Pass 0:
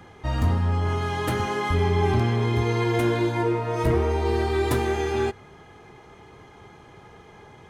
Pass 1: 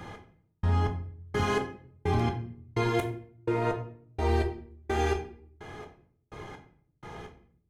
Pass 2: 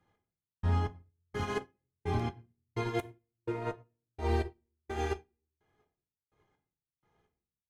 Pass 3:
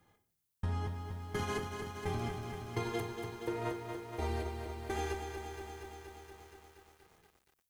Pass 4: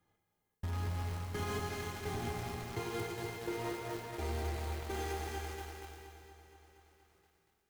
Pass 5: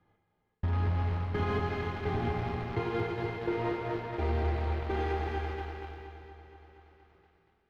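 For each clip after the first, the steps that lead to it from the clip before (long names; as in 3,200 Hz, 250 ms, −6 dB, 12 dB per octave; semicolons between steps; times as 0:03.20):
downward compressor, threshold −27 dBFS, peak gain reduction 9.5 dB; gate pattern "xx......x" 190 BPM −60 dB; on a send at −3.5 dB: convolution reverb RT60 0.55 s, pre-delay 6 ms; on the sum: level +3.5 dB
expander for the loud parts 2.5 to 1, over −43 dBFS; level −2 dB
high-shelf EQ 6,500 Hz +11 dB; downward compressor 6 to 1, threshold −38 dBFS, peak gain reduction 12.5 dB; feedback echo at a low word length 236 ms, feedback 80%, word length 11 bits, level −6 dB; level +4.5 dB
notch filter 1,000 Hz, Q 24; in parallel at −9 dB: log-companded quantiser 2 bits; on the sum: reverb whose tail is shaped and stops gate 460 ms flat, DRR 1 dB; level −8.5 dB
high-frequency loss of the air 340 metres; level +8 dB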